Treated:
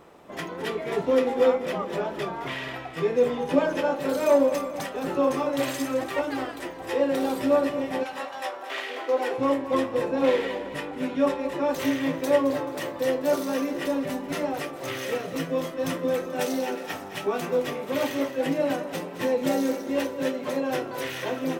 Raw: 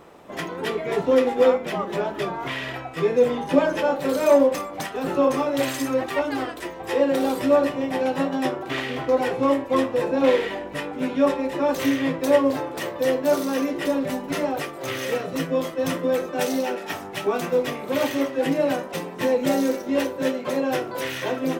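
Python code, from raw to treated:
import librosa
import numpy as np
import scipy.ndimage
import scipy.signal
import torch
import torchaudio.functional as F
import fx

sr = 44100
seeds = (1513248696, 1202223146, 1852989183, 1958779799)

y = fx.highpass(x, sr, hz=fx.line((8.03, 890.0), (9.37, 260.0)), slope=24, at=(8.03, 9.37), fade=0.02)
y = fx.echo_feedback(y, sr, ms=217, feedback_pct=47, wet_db=-13)
y = F.gain(torch.from_numpy(y), -3.5).numpy()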